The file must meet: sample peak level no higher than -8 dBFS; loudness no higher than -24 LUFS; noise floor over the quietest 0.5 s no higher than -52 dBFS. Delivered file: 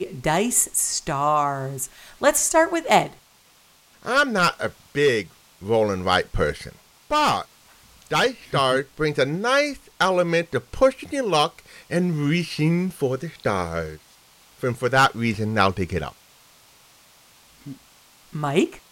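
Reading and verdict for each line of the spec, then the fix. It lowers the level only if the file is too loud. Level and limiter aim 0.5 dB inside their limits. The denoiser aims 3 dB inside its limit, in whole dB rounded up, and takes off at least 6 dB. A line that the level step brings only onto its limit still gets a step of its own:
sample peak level -5.0 dBFS: fail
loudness -22.0 LUFS: fail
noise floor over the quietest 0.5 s -56 dBFS: OK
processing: gain -2.5 dB; limiter -8.5 dBFS

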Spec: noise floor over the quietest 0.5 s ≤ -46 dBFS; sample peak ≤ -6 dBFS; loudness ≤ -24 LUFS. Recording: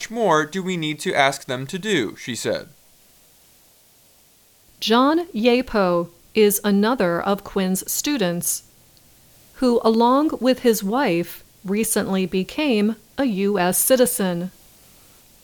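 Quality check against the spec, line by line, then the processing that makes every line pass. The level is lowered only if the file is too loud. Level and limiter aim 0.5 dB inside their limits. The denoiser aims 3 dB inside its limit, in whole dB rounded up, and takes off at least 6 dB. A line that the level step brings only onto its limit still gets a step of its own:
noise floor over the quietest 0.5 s -55 dBFS: OK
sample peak -4.5 dBFS: fail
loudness -20.5 LUFS: fail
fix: gain -4 dB

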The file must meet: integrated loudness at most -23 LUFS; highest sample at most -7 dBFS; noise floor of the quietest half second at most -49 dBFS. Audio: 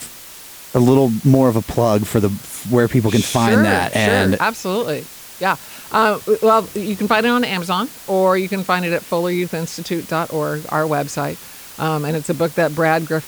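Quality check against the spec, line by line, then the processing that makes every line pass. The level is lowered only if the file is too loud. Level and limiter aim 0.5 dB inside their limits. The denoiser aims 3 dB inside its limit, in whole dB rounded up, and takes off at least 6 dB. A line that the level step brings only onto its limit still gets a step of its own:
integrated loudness -17.5 LUFS: fail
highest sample -3.0 dBFS: fail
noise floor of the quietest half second -37 dBFS: fail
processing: denoiser 9 dB, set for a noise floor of -37 dBFS; gain -6 dB

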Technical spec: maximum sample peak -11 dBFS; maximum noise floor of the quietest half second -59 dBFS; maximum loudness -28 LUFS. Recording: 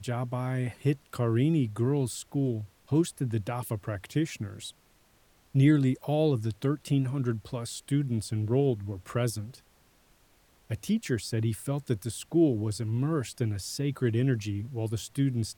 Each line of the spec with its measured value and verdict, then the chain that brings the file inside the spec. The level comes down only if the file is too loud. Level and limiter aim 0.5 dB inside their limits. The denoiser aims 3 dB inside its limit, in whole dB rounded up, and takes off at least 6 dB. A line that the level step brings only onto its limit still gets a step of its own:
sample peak -12.0 dBFS: OK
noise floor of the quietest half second -63 dBFS: OK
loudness -29.5 LUFS: OK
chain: none

